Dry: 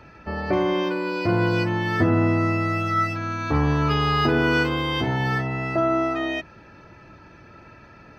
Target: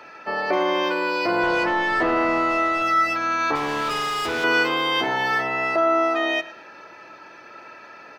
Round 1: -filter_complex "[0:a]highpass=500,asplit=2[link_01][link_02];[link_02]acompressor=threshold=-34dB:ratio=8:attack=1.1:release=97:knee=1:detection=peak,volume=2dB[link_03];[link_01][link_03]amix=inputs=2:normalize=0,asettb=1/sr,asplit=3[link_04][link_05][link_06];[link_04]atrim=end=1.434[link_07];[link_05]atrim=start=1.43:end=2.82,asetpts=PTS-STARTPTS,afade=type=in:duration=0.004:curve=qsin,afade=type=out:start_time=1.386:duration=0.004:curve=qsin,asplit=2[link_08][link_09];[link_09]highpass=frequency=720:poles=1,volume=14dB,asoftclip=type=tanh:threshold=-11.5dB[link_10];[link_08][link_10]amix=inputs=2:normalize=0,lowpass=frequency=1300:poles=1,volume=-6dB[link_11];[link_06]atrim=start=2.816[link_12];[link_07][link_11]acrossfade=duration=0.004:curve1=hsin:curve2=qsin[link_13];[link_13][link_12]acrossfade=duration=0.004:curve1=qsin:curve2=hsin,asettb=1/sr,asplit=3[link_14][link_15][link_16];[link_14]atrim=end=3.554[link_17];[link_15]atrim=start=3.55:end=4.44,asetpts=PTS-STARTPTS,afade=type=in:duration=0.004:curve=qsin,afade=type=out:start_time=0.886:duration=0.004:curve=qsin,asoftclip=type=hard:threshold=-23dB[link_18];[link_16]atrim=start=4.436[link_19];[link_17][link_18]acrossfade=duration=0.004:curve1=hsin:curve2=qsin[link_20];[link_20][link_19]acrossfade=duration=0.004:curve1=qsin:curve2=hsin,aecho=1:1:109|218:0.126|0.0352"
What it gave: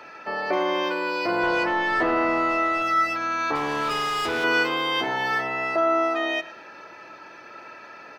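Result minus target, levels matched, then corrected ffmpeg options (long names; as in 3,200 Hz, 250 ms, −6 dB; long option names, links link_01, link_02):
downward compressor: peak gain reduction +7.5 dB
-filter_complex "[0:a]highpass=500,asplit=2[link_01][link_02];[link_02]acompressor=threshold=-25.5dB:ratio=8:attack=1.1:release=97:knee=1:detection=peak,volume=2dB[link_03];[link_01][link_03]amix=inputs=2:normalize=0,asettb=1/sr,asplit=3[link_04][link_05][link_06];[link_04]atrim=end=1.434[link_07];[link_05]atrim=start=1.43:end=2.82,asetpts=PTS-STARTPTS,afade=type=in:duration=0.004:curve=qsin,afade=type=out:start_time=1.386:duration=0.004:curve=qsin,asplit=2[link_08][link_09];[link_09]highpass=frequency=720:poles=1,volume=14dB,asoftclip=type=tanh:threshold=-11.5dB[link_10];[link_08][link_10]amix=inputs=2:normalize=0,lowpass=frequency=1300:poles=1,volume=-6dB[link_11];[link_06]atrim=start=2.816[link_12];[link_07][link_11]acrossfade=duration=0.004:curve1=hsin:curve2=qsin[link_13];[link_13][link_12]acrossfade=duration=0.004:curve1=qsin:curve2=hsin,asettb=1/sr,asplit=3[link_14][link_15][link_16];[link_14]atrim=end=3.554[link_17];[link_15]atrim=start=3.55:end=4.44,asetpts=PTS-STARTPTS,afade=type=in:duration=0.004:curve=qsin,afade=type=out:start_time=0.886:duration=0.004:curve=qsin,asoftclip=type=hard:threshold=-23dB[link_18];[link_16]atrim=start=4.436[link_19];[link_17][link_18]acrossfade=duration=0.004:curve1=hsin:curve2=qsin[link_20];[link_20][link_19]acrossfade=duration=0.004:curve1=qsin:curve2=hsin,aecho=1:1:109|218:0.126|0.0352"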